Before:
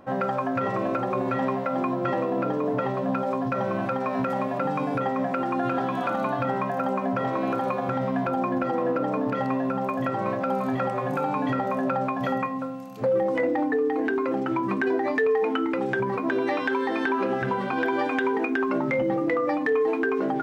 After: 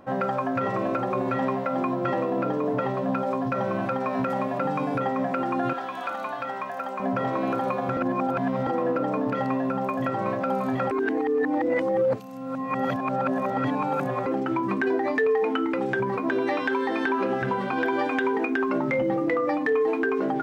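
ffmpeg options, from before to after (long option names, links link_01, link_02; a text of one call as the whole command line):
ffmpeg -i in.wav -filter_complex "[0:a]asettb=1/sr,asplit=3[link_01][link_02][link_03];[link_01]atrim=end=5.734[link_04];[link_02]atrim=start=5.73:end=7,asetpts=PTS-STARTPTS,afade=type=in:duration=0.004:curve=qsin,afade=type=out:start_time=1.266:duration=0.004:curve=qsin,highpass=frequency=1100:poles=1[link_05];[link_03]atrim=start=6.996[link_06];[link_04][link_05]acrossfade=duration=0.004:curve1=hsin:curve2=qsin[link_07];[link_07][link_06]acrossfade=duration=0.004:curve1=qsin:curve2=hsin,asplit=5[link_08][link_09][link_10][link_11][link_12];[link_08]atrim=end=7.972[link_13];[link_09]atrim=start=7.968:end=8.672,asetpts=PTS-STARTPTS,areverse[link_14];[link_10]atrim=start=8.668:end=10.912[link_15];[link_11]atrim=start=10.908:end=14.262,asetpts=PTS-STARTPTS,areverse[link_16];[link_12]atrim=start=14.258[link_17];[link_13][link_14]acrossfade=duration=0.004:curve1=hsin:curve2=hsin[link_18];[link_18][link_15]acrossfade=duration=0.004:curve1=hsin:curve2=hsin[link_19];[link_19][link_16]acrossfade=duration=0.004:curve1=hsin:curve2=hsin[link_20];[link_20][link_17]acrossfade=duration=0.004:curve1=hsin:curve2=hsin" out.wav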